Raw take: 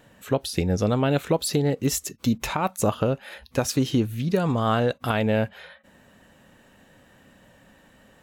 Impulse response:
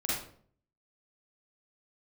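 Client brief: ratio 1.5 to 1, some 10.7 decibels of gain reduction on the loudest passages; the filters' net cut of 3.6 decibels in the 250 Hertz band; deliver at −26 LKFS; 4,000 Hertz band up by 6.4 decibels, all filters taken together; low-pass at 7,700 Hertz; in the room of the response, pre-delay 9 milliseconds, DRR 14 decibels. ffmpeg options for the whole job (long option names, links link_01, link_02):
-filter_complex "[0:a]lowpass=7700,equalizer=frequency=250:width_type=o:gain=-4.5,equalizer=frequency=4000:width_type=o:gain=8.5,acompressor=threshold=-49dB:ratio=1.5,asplit=2[link_01][link_02];[1:a]atrim=start_sample=2205,adelay=9[link_03];[link_02][link_03]afir=irnorm=-1:irlink=0,volume=-20.5dB[link_04];[link_01][link_04]amix=inputs=2:normalize=0,volume=9dB"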